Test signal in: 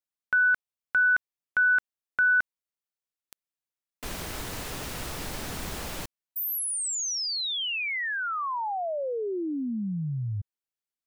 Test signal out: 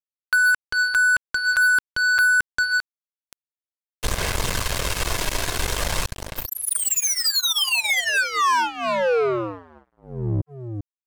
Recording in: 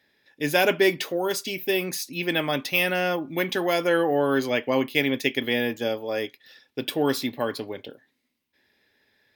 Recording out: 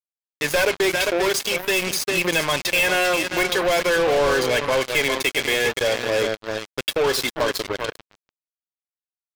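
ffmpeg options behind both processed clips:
ffmpeg -i in.wav -filter_complex "[0:a]aecho=1:1:396:0.335,acrossover=split=440|2000[link_01][link_02][link_03];[link_01]acompressor=threshold=-49dB:ratio=2:attack=1.9:release=196:knee=2.83:detection=peak[link_04];[link_04][link_02][link_03]amix=inputs=3:normalize=0,aphaser=in_gain=1:out_gain=1:delay=3.1:decay=0.35:speed=0.47:type=sinusoidal,equalizer=frequency=590:width_type=o:width=0.35:gain=-2,aecho=1:1:1.9:0.43,asoftclip=type=tanh:threshold=-21dB,lowpass=11000,lowshelf=frequency=170:gain=10.5,acompressor=threshold=-28dB:ratio=4:attack=7.2:release=62:knee=6:detection=peak,acrusher=bits=4:mix=0:aa=0.5,volume=9dB" out.wav

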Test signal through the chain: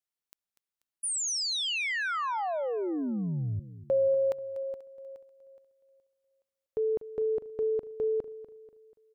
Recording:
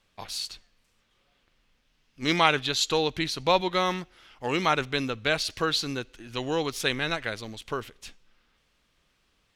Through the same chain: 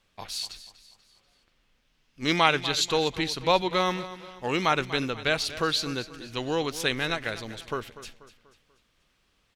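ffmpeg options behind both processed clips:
ffmpeg -i in.wav -af "aecho=1:1:243|486|729|972:0.178|0.0782|0.0344|0.0151" out.wav

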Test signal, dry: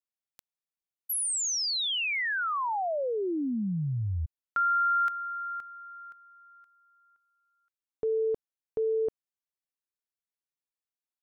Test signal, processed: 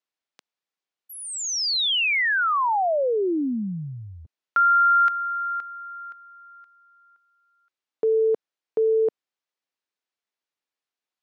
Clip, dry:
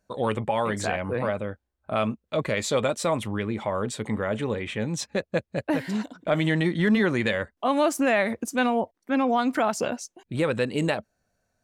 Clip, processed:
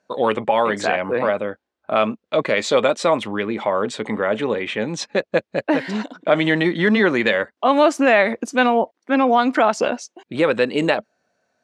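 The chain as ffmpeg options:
ffmpeg -i in.wav -af "highpass=260,lowpass=5000,volume=8dB" out.wav

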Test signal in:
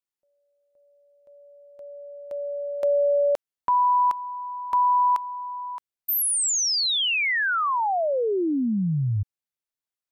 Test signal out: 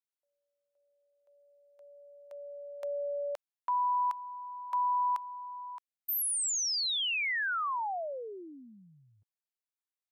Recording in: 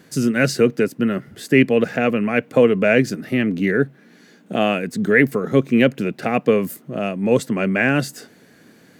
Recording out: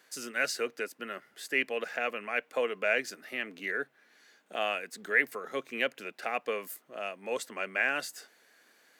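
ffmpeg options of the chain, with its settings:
ffmpeg -i in.wav -af "highpass=760,volume=-8dB" out.wav

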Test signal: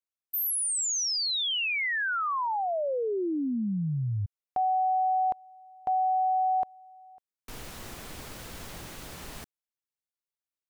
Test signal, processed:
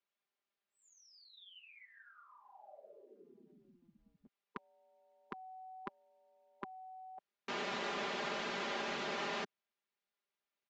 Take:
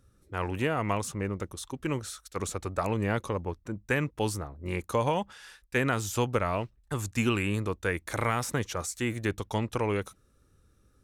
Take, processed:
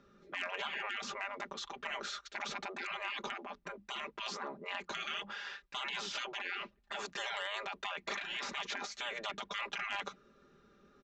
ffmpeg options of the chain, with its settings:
ffmpeg -i in.wav -filter_complex "[0:a]afftfilt=real='re*lt(hypot(re,im),0.0282)':imag='im*lt(hypot(re,im),0.0282)':win_size=1024:overlap=0.75,acrossover=split=180 4100:gain=0.1 1 0.126[link_01][link_02][link_03];[link_01][link_02][link_03]amix=inputs=3:normalize=0,aecho=1:1:5:0.7,aresample=16000,volume=33.5dB,asoftclip=hard,volume=-33.5dB,aresample=44100,volume=6dB" out.wav

